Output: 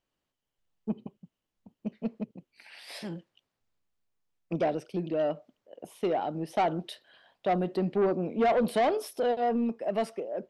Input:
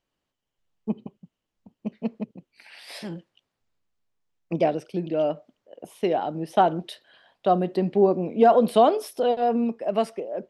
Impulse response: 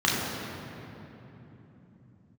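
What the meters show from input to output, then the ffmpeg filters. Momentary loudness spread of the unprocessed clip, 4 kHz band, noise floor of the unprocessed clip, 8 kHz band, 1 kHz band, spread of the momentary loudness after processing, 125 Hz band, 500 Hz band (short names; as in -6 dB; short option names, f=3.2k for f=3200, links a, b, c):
19 LU, -5.0 dB, -83 dBFS, n/a, -7.0 dB, 17 LU, -4.5 dB, -6.5 dB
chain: -af "asoftclip=type=tanh:threshold=-17dB,volume=-3dB"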